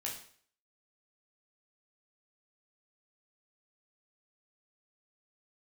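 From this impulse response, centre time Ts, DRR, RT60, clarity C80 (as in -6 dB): 29 ms, -3.5 dB, 0.55 s, 10.0 dB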